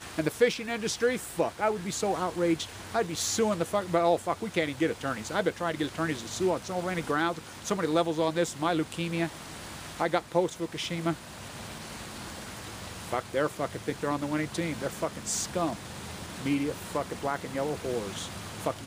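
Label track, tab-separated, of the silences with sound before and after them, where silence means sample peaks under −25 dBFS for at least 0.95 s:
11.120000	13.130000	silence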